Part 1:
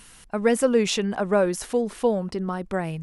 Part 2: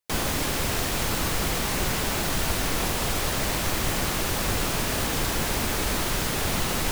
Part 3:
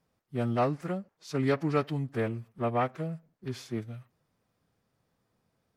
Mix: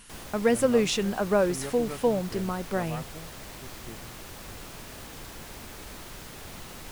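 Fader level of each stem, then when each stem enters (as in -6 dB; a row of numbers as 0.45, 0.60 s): -2.5, -16.5, -11.0 dB; 0.00, 0.00, 0.15 s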